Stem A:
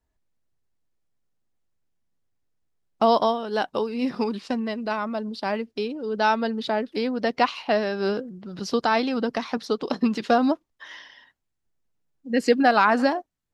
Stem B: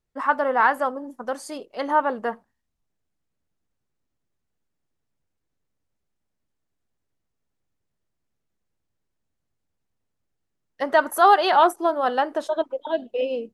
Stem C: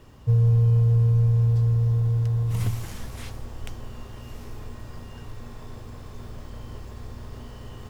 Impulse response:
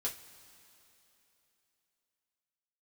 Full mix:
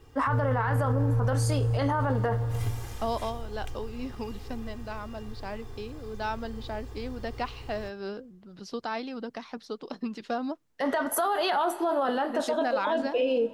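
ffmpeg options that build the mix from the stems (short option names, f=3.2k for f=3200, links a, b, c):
-filter_complex "[0:a]volume=-11.5dB[a];[1:a]acrossover=split=230[b][c];[c]acompressor=threshold=-23dB:ratio=5[d];[b][d]amix=inputs=2:normalize=0,volume=2dB,asplit=2[e][f];[f]volume=-5dB[g];[2:a]aecho=1:1:2.5:0.69,volume=-8dB,asplit=2[h][i];[i]volume=-7.5dB[j];[3:a]atrim=start_sample=2205[k];[g][j]amix=inputs=2:normalize=0[l];[l][k]afir=irnorm=-1:irlink=0[m];[a][e][h][m]amix=inputs=4:normalize=0,alimiter=limit=-18.5dB:level=0:latency=1:release=14"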